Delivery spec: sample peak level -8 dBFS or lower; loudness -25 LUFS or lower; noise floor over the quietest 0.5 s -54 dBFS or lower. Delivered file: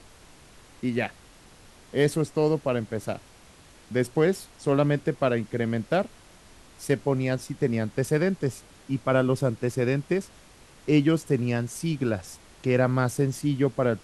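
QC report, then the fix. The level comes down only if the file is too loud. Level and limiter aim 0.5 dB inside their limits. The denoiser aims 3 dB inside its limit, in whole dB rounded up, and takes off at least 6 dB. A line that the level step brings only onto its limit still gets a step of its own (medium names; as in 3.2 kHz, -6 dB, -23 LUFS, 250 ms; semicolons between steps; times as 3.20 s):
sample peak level -9.0 dBFS: pass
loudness -26.5 LUFS: pass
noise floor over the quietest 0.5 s -52 dBFS: fail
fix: noise reduction 6 dB, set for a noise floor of -52 dBFS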